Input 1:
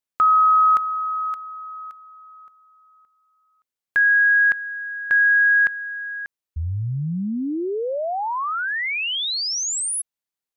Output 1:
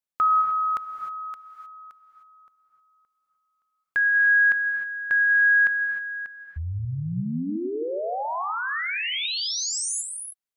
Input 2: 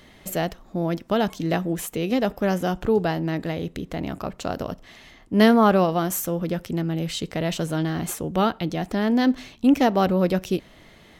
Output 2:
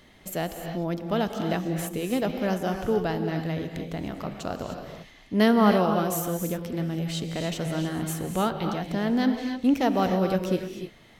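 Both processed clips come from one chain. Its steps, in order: non-linear reverb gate 0.33 s rising, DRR 5 dB; gain -4.5 dB

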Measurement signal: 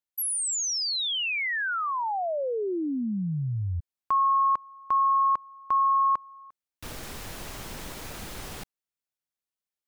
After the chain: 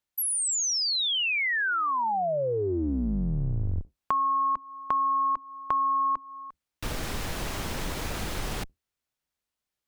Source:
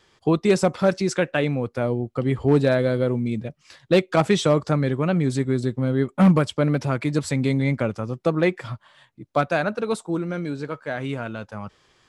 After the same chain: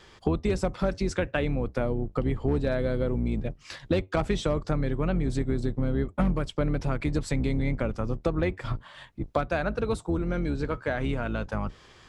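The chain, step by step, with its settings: octaver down 2 oct, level 0 dB; high shelf 7100 Hz -6 dB; compressor 4:1, threshold -33 dBFS; gain +7 dB

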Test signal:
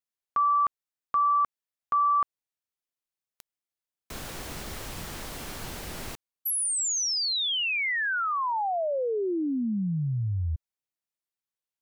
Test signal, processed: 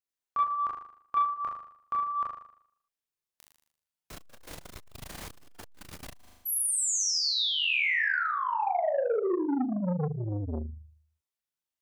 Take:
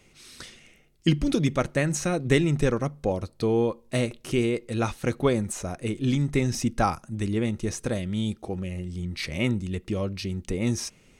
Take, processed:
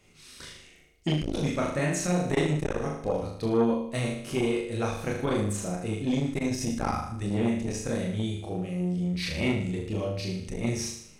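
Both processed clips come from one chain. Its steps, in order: chorus voices 2, 0.27 Hz, delay 27 ms, depth 1.4 ms; flutter echo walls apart 6.7 m, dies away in 0.65 s; core saturation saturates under 480 Hz

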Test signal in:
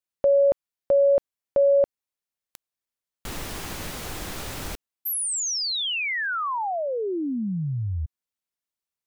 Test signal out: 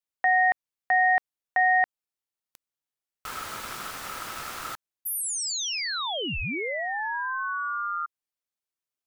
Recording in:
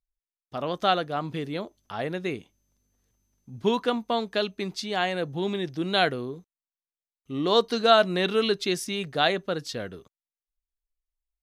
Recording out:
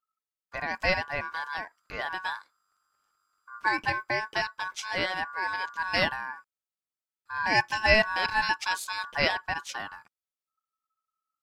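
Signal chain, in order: ring modulator 1300 Hz

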